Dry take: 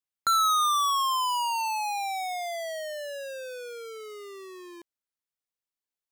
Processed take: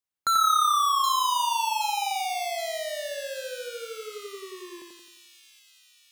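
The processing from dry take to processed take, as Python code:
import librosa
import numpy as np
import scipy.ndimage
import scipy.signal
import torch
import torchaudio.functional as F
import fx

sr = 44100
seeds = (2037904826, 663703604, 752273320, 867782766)

y = fx.echo_split(x, sr, split_hz=2700.0, low_ms=88, high_ms=772, feedback_pct=52, wet_db=-3.5)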